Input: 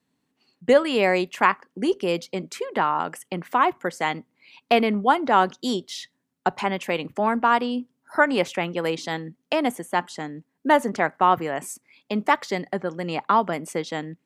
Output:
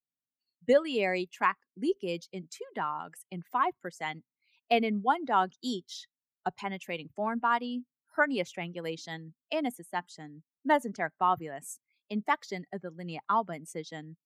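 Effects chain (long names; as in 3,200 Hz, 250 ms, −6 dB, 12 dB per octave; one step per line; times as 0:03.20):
spectral dynamics exaggerated over time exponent 1.5
level −5.5 dB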